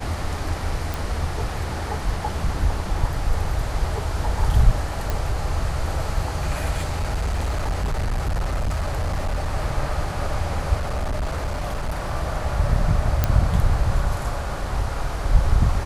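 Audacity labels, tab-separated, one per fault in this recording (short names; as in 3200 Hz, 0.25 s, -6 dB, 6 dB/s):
0.940000	0.940000	pop
5.100000	5.100000	pop
6.770000	9.510000	clipped -19.5 dBFS
10.780000	12.140000	clipped -21 dBFS
13.240000	13.240000	pop -5 dBFS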